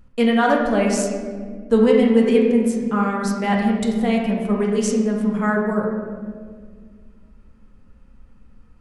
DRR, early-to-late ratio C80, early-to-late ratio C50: -1.5 dB, 4.0 dB, 2.0 dB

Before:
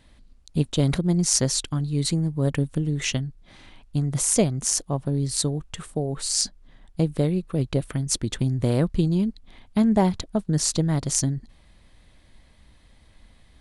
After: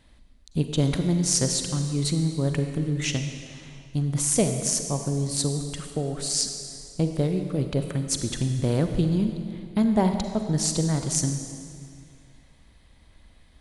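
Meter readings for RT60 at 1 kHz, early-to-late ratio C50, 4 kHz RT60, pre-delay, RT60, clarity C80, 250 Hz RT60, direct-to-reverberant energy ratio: 2.2 s, 6.5 dB, 1.9 s, 38 ms, 2.2 s, 7.5 dB, 2.3 s, 6.0 dB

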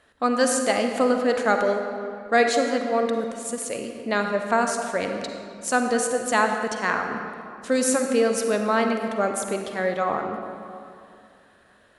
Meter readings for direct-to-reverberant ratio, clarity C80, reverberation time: 4.0 dB, 5.5 dB, 2.6 s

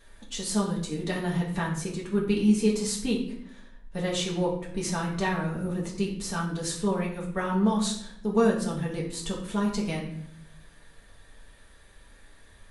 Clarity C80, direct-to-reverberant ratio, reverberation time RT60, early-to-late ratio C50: 9.5 dB, -4.5 dB, 0.70 s, 6.0 dB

